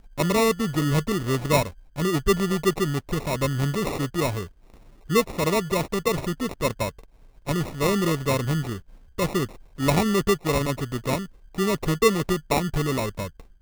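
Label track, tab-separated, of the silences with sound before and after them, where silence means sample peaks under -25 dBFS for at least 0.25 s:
1.660000	1.980000	silence
4.430000	5.100000	silence
6.890000	7.480000	silence
8.750000	9.190000	silence
9.450000	9.800000	silence
11.200000	11.580000	silence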